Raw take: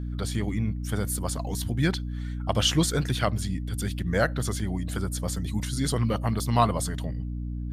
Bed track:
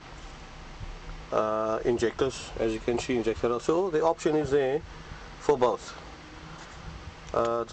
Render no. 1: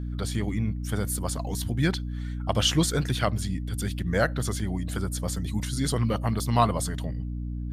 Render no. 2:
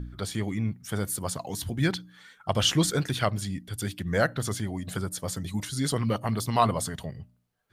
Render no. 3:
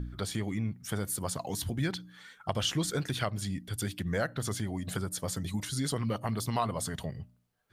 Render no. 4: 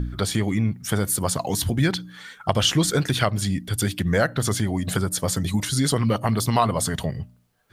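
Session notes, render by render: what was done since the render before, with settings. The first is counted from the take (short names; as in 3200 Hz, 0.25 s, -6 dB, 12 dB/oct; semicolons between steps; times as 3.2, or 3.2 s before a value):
nothing audible
de-hum 60 Hz, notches 5
compressor 2.5:1, threshold -30 dBFS, peak gain reduction 9.5 dB
gain +10.5 dB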